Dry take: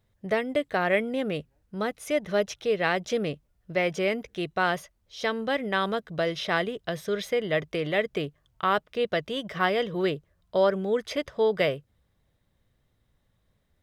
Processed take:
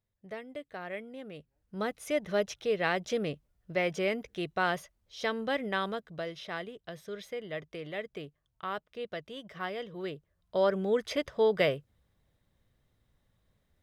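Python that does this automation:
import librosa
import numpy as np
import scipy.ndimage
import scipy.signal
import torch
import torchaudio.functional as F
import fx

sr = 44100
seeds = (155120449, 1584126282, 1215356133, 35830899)

y = fx.gain(x, sr, db=fx.line((1.33, -15.5), (1.8, -4.0), (5.65, -4.0), (6.39, -12.0), (10.01, -12.0), (10.83, -2.0)))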